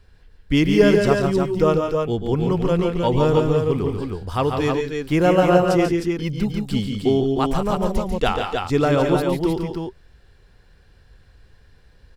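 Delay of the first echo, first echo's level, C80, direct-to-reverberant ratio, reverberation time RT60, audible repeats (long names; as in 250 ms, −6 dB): 112 ms, −19.0 dB, no reverb audible, no reverb audible, no reverb audible, 3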